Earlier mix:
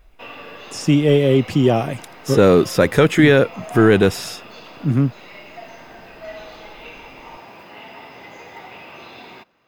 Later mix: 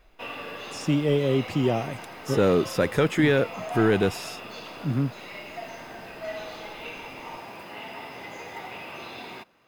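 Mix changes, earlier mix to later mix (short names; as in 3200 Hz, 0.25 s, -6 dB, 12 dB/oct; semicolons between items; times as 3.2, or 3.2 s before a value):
speech -8.5 dB; background: add bell 10000 Hz +12 dB 0.51 oct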